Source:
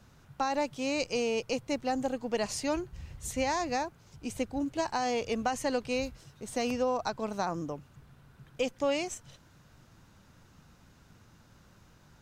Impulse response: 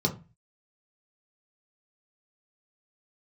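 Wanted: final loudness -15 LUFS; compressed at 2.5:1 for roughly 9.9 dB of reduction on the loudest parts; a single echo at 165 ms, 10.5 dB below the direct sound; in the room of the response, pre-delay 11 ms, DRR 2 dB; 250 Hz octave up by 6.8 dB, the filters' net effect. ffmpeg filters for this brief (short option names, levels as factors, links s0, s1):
-filter_complex "[0:a]equalizer=f=250:t=o:g=7.5,acompressor=threshold=0.0126:ratio=2.5,aecho=1:1:165:0.299,asplit=2[s0][s1];[1:a]atrim=start_sample=2205,adelay=11[s2];[s1][s2]afir=irnorm=-1:irlink=0,volume=0.282[s3];[s0][s3]amix=inputs=2:normalize=0,volume=7.08"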